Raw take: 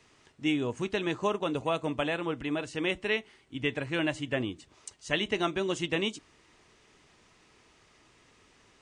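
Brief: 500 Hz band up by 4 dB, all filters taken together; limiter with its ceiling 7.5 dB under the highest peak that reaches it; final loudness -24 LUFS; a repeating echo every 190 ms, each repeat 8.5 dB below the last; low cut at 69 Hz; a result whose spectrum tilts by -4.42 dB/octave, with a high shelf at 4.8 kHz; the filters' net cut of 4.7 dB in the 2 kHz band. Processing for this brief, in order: high-pass 69 Hz; peaking EQ 500 Hz +5.5 dB; peaking EQ 2 kHz -7.5 dB; treble shelf 4.8 kHz +4.5 dB; peak limiter -21 dBFS; feedback delay 190 ms, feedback 38%, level -8.5 dB; trim +7.5 dB

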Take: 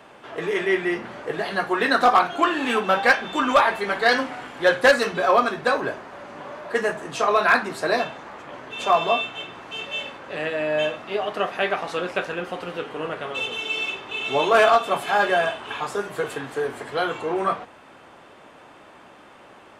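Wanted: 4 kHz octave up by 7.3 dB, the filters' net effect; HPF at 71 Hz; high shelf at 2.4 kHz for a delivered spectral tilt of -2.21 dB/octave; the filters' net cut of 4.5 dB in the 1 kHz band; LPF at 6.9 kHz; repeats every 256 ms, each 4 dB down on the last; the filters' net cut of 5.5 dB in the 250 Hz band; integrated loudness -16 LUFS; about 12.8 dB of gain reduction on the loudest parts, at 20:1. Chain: high-pass 71 Hz; low-pass 6.9 kHz; peaking EQ 250 Hz -7.5 dB; peaking EQ 1 kHz -7.5 dB; treble shelf 2.4 kHz +6.5 dB; peaking EQ 4 kHz +4.5 dB; compression 20:1, threshold -24 dBFS; feedback delay 256 ms, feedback 63%, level -4 dB; trim +10.5 dB

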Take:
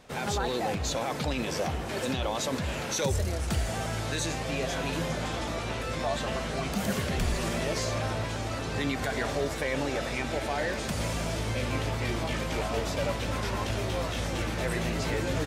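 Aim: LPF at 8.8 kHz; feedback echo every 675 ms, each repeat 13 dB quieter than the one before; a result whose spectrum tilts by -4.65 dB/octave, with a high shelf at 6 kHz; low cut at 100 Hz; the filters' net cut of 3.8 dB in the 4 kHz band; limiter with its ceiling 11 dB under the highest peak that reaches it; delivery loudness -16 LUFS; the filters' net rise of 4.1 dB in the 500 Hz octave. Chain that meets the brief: high-pass 100 Hz; low-pass 8.8 kHz; peaking EQ 500 Hz +5 dB; peaking EQ 4 kHz -7 dB; treble shelf 6 kHz +6 dB; peak limiter -25.5 dBFS; feedback delay 675 ms, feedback 22%, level -13 dB; trim +18 dB

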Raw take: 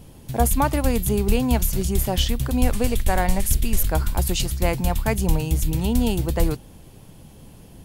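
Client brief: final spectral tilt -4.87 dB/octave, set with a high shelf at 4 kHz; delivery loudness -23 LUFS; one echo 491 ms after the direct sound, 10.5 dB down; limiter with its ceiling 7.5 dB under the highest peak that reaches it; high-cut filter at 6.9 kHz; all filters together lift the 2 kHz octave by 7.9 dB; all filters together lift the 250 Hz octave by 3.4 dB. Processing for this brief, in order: low-pass 6.9 kHz; peaking EQ 250 Hz +4 dB; peaking EQ 2 kHz +8.5 dB; treble shelf 4 kHz +6 dB; peak limiter -11.5 dBFS; delay 491 ms -10.5 dB; trim -0.5 dB

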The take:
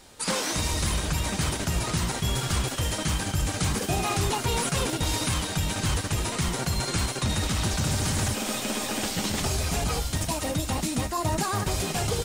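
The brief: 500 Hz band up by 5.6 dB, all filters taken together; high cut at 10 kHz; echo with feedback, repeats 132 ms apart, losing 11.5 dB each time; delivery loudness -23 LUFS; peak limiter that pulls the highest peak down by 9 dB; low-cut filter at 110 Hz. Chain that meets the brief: high-pass 110 Hz; low-pass 10 kHz; peaking EQ 500 Hz +7 dB; peak limiter -21.5 dBFS; feedback delay 132 ms, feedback 27%, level -11.5 dB; trim +7 dB

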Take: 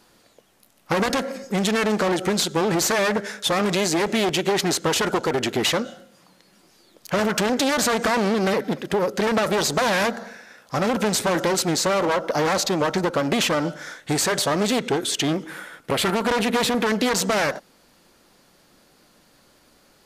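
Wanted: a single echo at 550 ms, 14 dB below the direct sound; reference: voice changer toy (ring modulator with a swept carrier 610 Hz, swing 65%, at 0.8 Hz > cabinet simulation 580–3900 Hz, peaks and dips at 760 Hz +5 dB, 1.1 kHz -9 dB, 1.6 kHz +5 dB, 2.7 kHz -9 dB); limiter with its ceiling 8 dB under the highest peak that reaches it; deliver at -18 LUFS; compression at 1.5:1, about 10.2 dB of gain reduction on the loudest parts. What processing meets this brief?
compression 1.5:1, threshold -47 dBFS; peak limiter -27.5 dBFS; delay 550 ms -14 dB; ring modulator with a swept carrier 610 Hz, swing 65%, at 0.8 Hz; cabinet simulation 580–3900 Hz, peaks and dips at 760 Hz +5 dB, 1.1 kHz -9 dB, 1.6 kHz +5 dB, 2.7 kHz -9 dB; trim +23 dB

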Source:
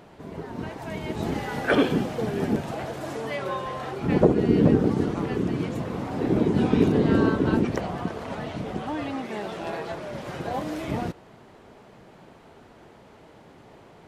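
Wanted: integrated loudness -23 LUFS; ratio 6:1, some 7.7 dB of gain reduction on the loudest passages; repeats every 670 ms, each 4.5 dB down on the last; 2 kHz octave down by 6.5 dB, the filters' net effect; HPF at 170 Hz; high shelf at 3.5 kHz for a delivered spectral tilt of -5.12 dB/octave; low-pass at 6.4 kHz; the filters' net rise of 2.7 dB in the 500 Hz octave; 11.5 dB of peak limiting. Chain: high-pass 170 Hz; low-pass 6.4 kHz; peaking EQ 500 Hz +4 dB; peaking EQ 2 kHz -7.5 dB; treble shelf 3.5 kHz -7 dB; compression 6:1, threshold -22 dBFS; peak limiter -22.5 dBFS; feedback delay 670 ms, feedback 60%, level -4.5 dB; trim +8 dB

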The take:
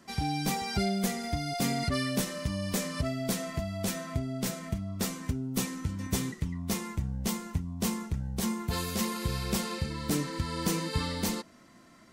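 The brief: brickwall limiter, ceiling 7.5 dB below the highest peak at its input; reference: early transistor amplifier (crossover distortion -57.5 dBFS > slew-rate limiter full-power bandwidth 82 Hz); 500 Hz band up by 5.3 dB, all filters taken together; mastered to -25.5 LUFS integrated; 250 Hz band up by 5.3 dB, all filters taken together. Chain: peaking EQ 250 Hz +5.5 dB; peaking EQ 500 Hz +5.5 dB; peak limiter -20 dBFS; crossover distortion -57.5 dBFS; slew-rate limiter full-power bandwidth 82 Hz; trim +6 dB

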